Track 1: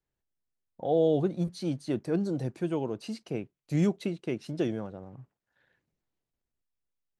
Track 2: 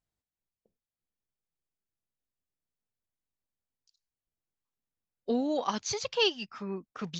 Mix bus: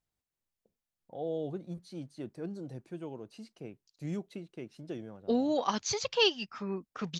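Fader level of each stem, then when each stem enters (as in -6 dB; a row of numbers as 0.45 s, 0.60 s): -11.0 dB, +0.5 dB; 0.30 s, 0.00 s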